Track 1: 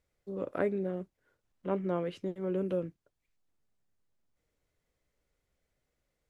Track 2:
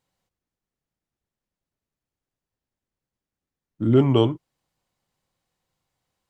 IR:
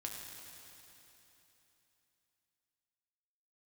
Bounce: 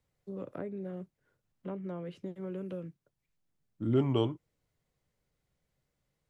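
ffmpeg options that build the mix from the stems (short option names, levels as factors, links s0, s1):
-filter_complex "[0:a]equalizer=f=140:w=1.3:g=10,acrossover=split=150|480|1100[s0][s1][s2][s3];[s0]acompressor=threshold=0.00251:ratio=4[s4];[s1]acompressor=threshold=0.0141:ratio=4[s5];[s2]acompressor=threshold=0.00708:ratio=4[s6];[s3]acompressor=threshold=0.00224:ratio=4[s7];[s4][s5][s6][s7]amix=inputs=4:normalize=0,volume=0.708[s8];[1:a]volume=0.299[s9];[s8][s9]amix=inputs=2:normalize=0"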